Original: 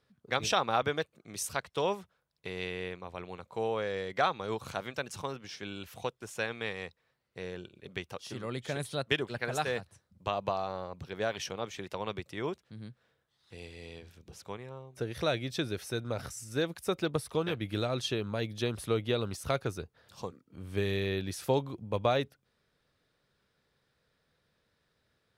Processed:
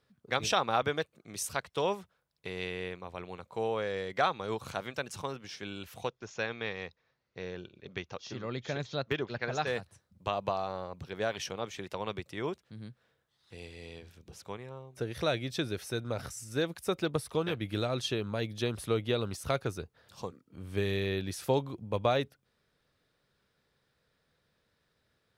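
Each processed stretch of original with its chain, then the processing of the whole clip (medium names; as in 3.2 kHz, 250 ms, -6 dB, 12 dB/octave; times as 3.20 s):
6.08–9.67 s: steep low-pass 6.8 kHz 96 dB/octave + de-esser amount 95% + band-stop 3 kHz, Q 24
whole clip: none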